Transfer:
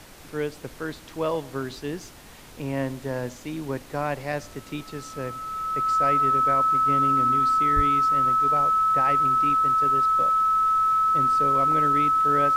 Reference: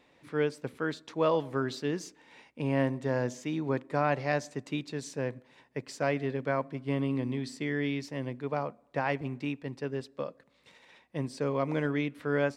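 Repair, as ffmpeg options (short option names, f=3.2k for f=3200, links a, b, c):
-filter_complex "[0:a]bandreject=f=1.3k:w=30,asplit=3[a][b][c];[a]afade=t=out:st=7.75:d=0.02[d];[b]highpass=f=140:w=0.5412,highpass=f=140:w=1.3066,afade=t=in:st=7.75:d=0.02,afade=t=out:st=7.87:d=0.02[e];[c]afade=t=in:st=7.87:d=0.02[f];[d][e][f]amix=inputs=3:normalize=0,afftdn=nr=17:nf=-44"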